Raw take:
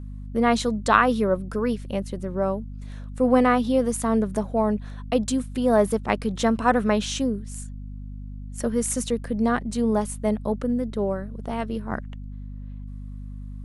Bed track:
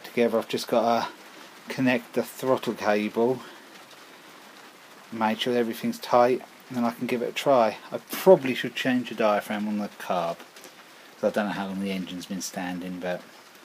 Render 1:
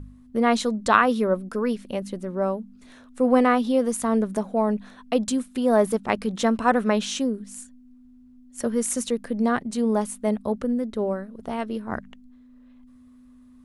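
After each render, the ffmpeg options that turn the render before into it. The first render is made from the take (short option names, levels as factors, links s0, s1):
-af "bandreject=f=50:t=h:w=4,bandreject=f=100:t=h:w=4,bandreject=f=150:t=h:w=4,bandreject=f=200:t=h:w=4"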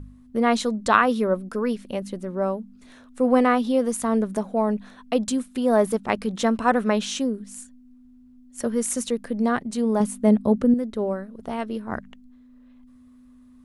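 -filter_complex "[0:a]asettb=1/sr,asplit=3[s0][s1][s2];[s0]atrim=end=10.004[s3];[s1]atrim=start=10:end=10.74,asetpts=PTS-STARTPTS,afade=t=in:d=0.004:c=qsin,afade=t=out:st=0.736:d=0.004:c=qsin,equalizer=f=190:w=0.48:g=8.5[s4];[s2]atrim=start=10.736[s5];[s3][s4]acrossfade=d=0.004:c1=hsin:c2=qsin[s6];[s6][s5]acrossfade=d=0.004:c1=qsin:c2=hsin"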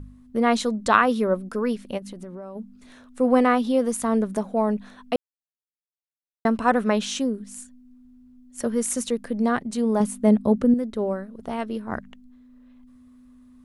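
-filter_complex "[0:a]asplit=3[s0][s1][s2];[s0]afade=t=out:st=1.97:d=0.02[s3];[s1]acompressor=threshold=0.0224:ratio=12:attack=3.2:release=140:knee=1:detection=peak,afade=t=in:st=1.97:d=0.02,afade=t=out:st=2.55:d=0.02[s4];[s2]afade=t=in:st=2.55:d=0.02[s5];[s3][s4][s5]amix=inputs=3:normalize=0,asplit=3[s6][s7][s8];[s6]atrim=end=5.16,asetpts=PTS-STARTPTS,afade=t=out:st=5.156:d=0.004:c=hsin[s9];[s7]atrim=start=5.16:end=6.45,asetpts=PTS-STARTPTS,volume=0[s10];[s8]atrim=start=6.45,asetpts=PTS-STARTPTS,afade=t=in:d=0.004:c=hsin[s11];[s9][s10][s11]concat=n=3:v=0:a=1"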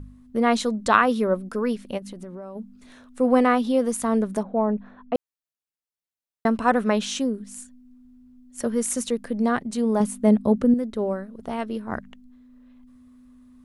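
-filter_complex "[0:a]asplit=3[s0][s1][s2];[s0]afade=t=out:st=4.42:d=0.02[s3];[s1]lowpass=1500,afade=t=in:st=4.42:d=0.02,afade=t=out:st=5.14:d=0.02[s4];[s2]afade=t=in:st=5.14:d=0.02[s5];[s3][s4][s5]amix=inputs=3:normalize=0"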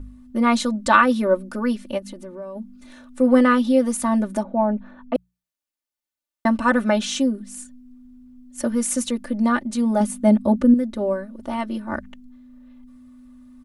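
-af "bandreject=f=60:t=h:w=6,bandreject=f=120:t=h:w=6,bandreject=f=180:t=h:w=6,aecho=1:1:3.4:0.96"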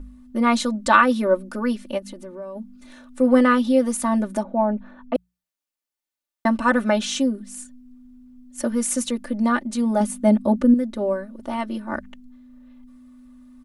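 -af "equalizer=f=100:t=o:w=0.85:g=-10"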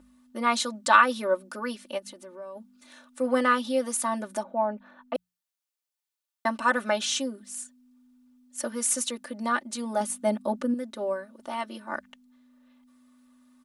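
-af "highpass=f=980:p=1,equalizer=f=2100:t=o:w=0.77:g=-2.5"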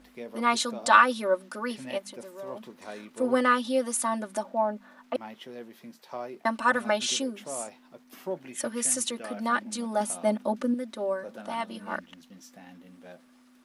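-filter_complex "[1:a]volume=0.126[s0];[0:a][s0]amix=inputs=2:normalize=0"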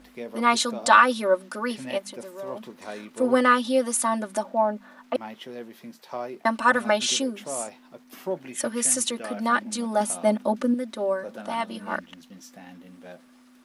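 -af "volume=1.58,alimiter=limit=0.708:level=0:latency=1"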